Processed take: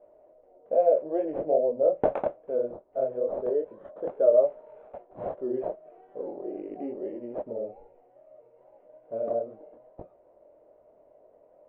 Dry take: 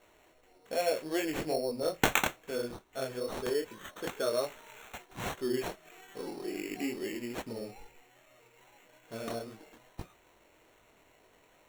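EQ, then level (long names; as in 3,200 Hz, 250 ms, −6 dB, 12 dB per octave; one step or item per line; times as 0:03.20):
low-pass with resonance 590 Hz, resonance Q 6.2
low-shelf EQ 230 Hz −7.5 dB
0.0 dB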